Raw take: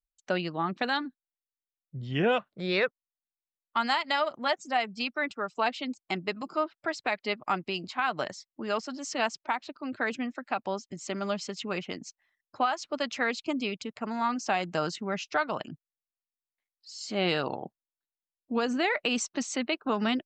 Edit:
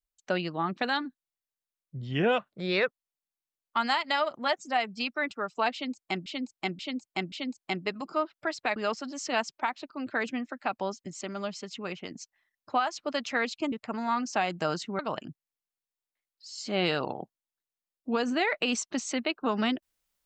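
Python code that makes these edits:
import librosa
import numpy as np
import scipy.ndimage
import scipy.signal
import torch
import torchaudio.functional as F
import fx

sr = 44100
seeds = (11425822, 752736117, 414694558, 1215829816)

y = fx.edit(x, sr, fx.repeat(start_s=5.73, length_s=0.53, count=4),
    fx.cut(start_s=7.17, length_s=1.45),
    fx.clip_gain(start_s=11.07, length_s=0.9, db=-3.5),
    fx.cut(start_s=13.58, length_s=0.27),
    fx.cut(start_s=15.12, length_s=0.3), tone=tone)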